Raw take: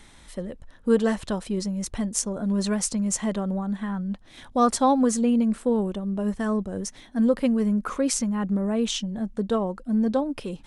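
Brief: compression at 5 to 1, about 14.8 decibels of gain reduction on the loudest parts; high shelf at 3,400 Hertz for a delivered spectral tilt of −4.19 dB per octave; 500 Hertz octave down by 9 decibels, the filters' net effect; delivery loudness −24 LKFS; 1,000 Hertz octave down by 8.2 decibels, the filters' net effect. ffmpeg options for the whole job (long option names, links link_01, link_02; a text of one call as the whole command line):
ffmpeg -i in.wav -af "equalizer=frequency=500:width_type=o:gain=-8.5,equalizer=frequency=1000:width_type=o:gain=-8.5,highshelf=frequency=3400:gain=5.5,acompressor=threshold=-36dB:ratio=5,volume=14dB" out.wav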